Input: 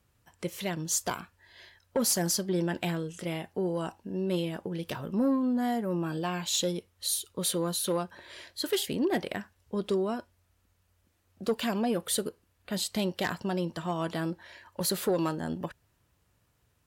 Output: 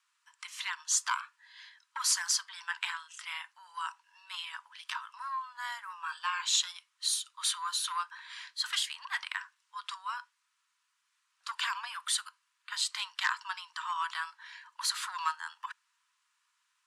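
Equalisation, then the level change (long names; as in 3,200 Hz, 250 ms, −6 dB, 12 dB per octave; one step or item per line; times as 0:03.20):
Chebyshev high-pass filter 970 Hz, order 6
dynamic equaliser 1,200 Hz, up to +5 dB, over −52 dBFS, Q 0.83
low-pass filter 9,300 Hz 24 dB per octave
+1.5 dB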